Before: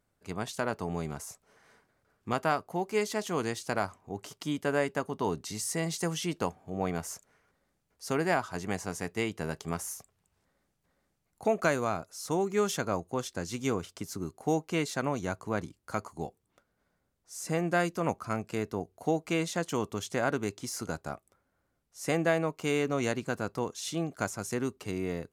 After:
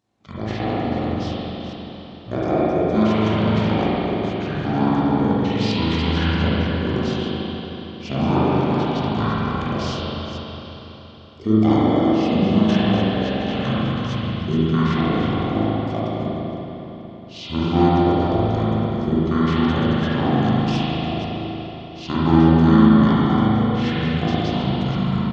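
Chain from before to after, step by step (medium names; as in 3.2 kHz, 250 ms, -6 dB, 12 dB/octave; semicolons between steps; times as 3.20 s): chunks repeated in reverse 247 ms, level -9 dB; high-pass 210 Hz 12 dB/octave; pitch shift -12 st; spring tank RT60 3.9 s, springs 37/46 ms, chirp 35 ms, DRR -9.5 dB; trim +3 dB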